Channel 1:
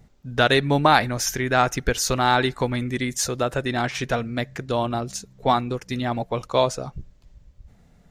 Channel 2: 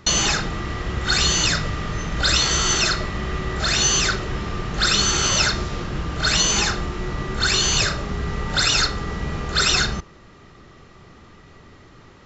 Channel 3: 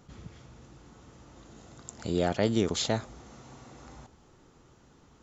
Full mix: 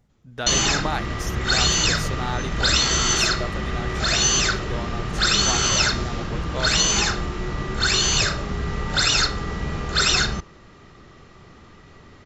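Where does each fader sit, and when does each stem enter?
-11.0, -0.5, -16.5 dB; 0.00, 0.40, 0.00 s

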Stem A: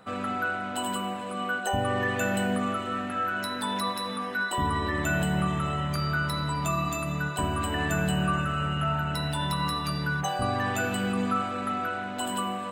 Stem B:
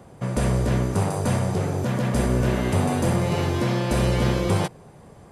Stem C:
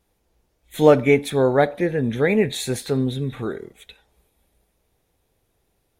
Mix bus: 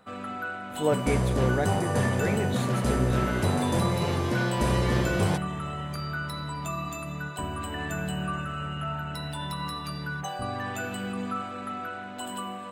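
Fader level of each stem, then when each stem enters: -5.0, -4.0, -12.0 dB; 0.00, 0.70, 0.00 s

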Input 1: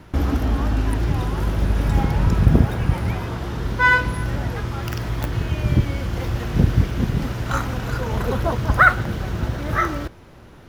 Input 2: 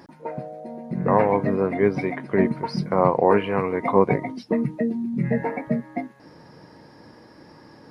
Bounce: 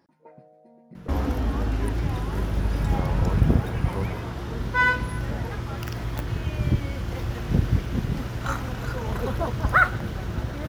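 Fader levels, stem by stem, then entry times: -5.0, -17.5 dB; 0.95, 0.00 s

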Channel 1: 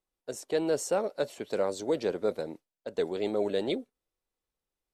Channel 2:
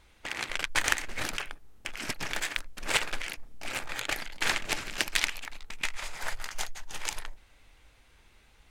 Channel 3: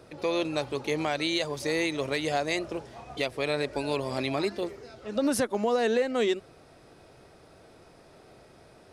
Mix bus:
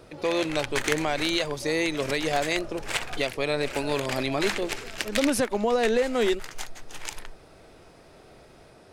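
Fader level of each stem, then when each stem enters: off, -2.0 dB, +2.0 dB; off, 0.00 s, 0.00 s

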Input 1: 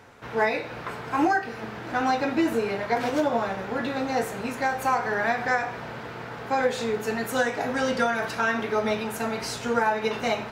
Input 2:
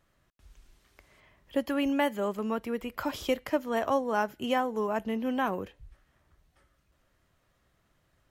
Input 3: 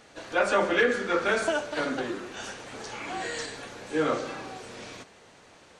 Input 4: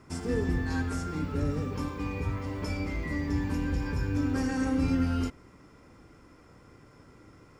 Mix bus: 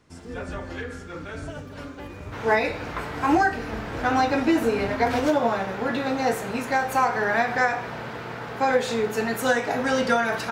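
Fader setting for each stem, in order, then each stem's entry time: +2.5, -17.0, -13.0, -7.5 dB; 2.10, 0.00, 0.00, 0.00 s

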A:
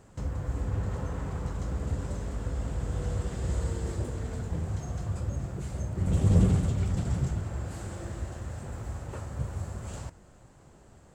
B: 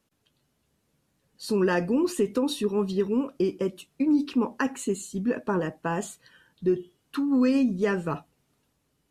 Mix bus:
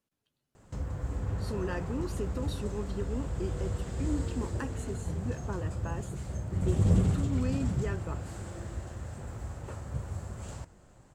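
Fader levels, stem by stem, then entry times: -2.5, -12.0 dB; 0.55, 0.00 s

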